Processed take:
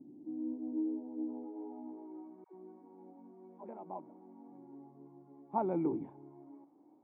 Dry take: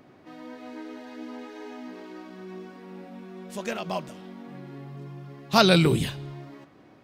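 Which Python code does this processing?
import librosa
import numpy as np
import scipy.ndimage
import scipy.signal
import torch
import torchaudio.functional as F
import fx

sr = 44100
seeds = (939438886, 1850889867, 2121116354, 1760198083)

y = fx.filter_sweep_bandpass(x, sr, from_hz=210.0, to_hz=1200.0, start_s=0.05, end_s=2.38, q=1.2)
y = fx.formant_cascade(y, sr, vowel='u')
y = fx.dispersion(y, sr, late='lows', ms=108.0, hz=470.0, at=(2.44, 3.69))
y = y * librosa.db_to_amplitude(8.5)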